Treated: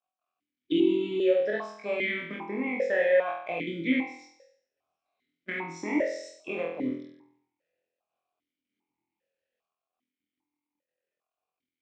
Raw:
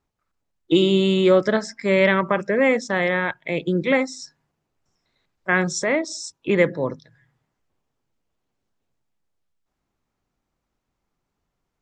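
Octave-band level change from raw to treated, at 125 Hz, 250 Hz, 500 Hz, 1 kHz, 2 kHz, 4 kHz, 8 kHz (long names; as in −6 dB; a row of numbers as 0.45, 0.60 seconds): −18.5, −7.5, −7.5, −10.5, −9.5, −12.5, −20.0 decibels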